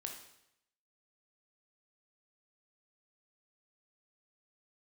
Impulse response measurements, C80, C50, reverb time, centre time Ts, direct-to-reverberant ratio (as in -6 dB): 9.0 dB, 6.0 dB, 0.80 s, 28 ms, 2.0 dB